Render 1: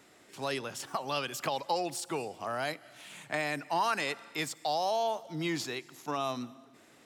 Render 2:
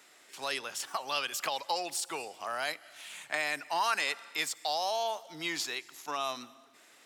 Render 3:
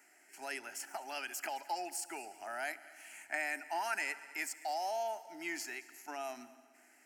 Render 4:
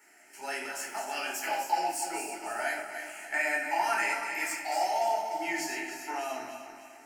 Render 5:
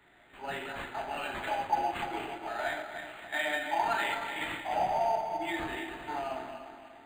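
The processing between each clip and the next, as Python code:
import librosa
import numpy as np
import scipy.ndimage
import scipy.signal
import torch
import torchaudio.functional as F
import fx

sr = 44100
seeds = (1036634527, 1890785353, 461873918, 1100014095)

y1 = fx.highpass(x, sr, hz=1300.0, slope=6)
y1 = F.gain(torch.from_numpy(y1), 4.0).numpy()
y2 = fx.fixed_phaser(y1, sr, hz=740.0, stages=8)
y2 = fx.echo_heads(y2, sr, ms=72, heads='all three', feedback_pct=55, wet_db=-24.0)
y2 = F.gain(torch.from_numpy(y2), -3.0).numpy()
y3 = fx.reverse_delay_fb(y2, sr, ms=149, feedback_pct=66, wet_db=-7)
y3 = fx.room_shoebox(y3, sr, seeds[0], volume_m3=500.0, walls='furnished', distance_m=4.3)
y4 = np.interp(np.arange(len(y3)), np.arange(len(y3))[::8], y3[::8])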